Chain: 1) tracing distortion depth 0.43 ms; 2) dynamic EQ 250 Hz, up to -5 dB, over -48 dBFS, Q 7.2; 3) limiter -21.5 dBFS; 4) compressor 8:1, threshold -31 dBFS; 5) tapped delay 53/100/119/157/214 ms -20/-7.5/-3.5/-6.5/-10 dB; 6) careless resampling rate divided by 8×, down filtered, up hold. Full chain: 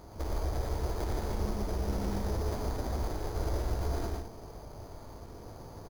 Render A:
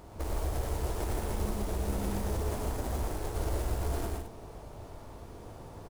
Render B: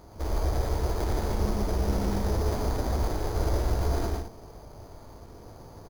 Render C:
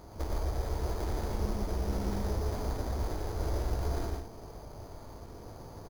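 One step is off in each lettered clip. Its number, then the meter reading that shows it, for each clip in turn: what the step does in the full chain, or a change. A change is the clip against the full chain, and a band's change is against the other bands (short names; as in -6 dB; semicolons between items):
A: 6, 8 kHz band +4.5 dB; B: 4, mean gain reduction 4.0 dB; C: 3, mean gain reduction 2.5 dB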